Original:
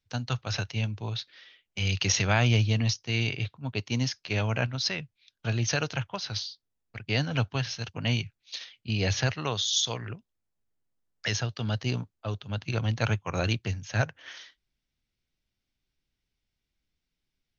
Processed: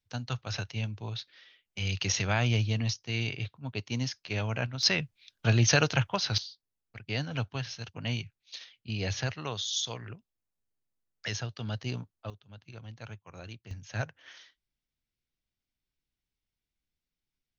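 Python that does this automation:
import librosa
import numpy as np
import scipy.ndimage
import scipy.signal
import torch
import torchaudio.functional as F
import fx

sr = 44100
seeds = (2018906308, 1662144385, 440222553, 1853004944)

y = fx.gain(x, sr, db=fx.steps((0.0, -4.0), (4.83, 4.5), (6.38, -5.5), (12.3, -17.5), (13.71, -7.0)))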